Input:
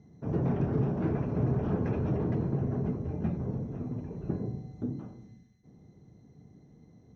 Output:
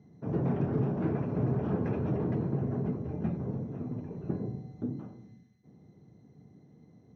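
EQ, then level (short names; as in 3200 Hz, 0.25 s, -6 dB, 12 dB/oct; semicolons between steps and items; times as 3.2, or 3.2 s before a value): HPF 100 Hz; air absorption 79 m; 0.0 dB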